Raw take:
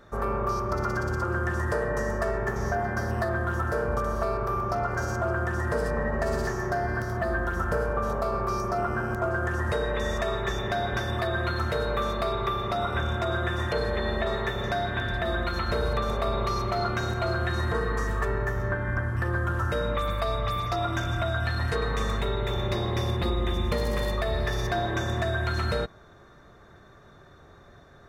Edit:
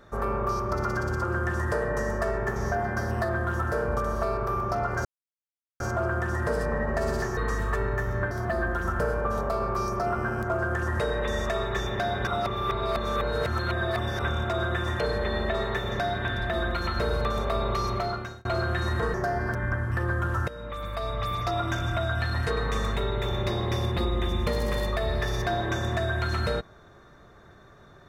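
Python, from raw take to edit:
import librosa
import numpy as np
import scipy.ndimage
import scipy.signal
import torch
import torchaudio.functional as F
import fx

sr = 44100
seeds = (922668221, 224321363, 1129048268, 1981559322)

y = fx.edit(x, sr, fx.insert_silence(at_s=5.05, length_s=0.75),
    fx.swap(start_s=6.62, length_s=0.41, other_s=17.86, other_length_s=0.94),
    fx.reverse_span(start_s=10.99, length_s=1.92),
    fx.fade_out_span(start_s=16.68, length_s=0.49),
    fx.fade_in_from(start_s=19.73, length_s=0.93, floor_db=-15.0), tone=tone)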